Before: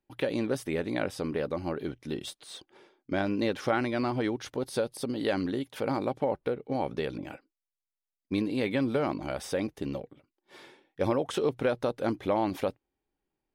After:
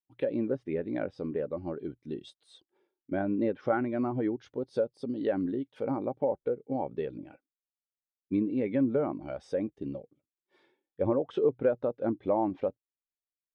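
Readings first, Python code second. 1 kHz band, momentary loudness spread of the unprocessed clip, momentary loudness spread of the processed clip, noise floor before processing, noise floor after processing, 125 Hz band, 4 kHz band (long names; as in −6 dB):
−3.5 dB, 9 LU, 11 LU, below −85 dBFS, below −85 dBFS, −3.0 dB, below −10 dB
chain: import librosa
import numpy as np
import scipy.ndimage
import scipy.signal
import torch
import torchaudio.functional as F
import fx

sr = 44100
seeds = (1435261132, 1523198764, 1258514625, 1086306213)

y = fx.env_lowpass_down(x, sr, base_hz=2400.0, full_db=-24.5)
y = fx.spectral_expand(y, sr, expansion=1.5)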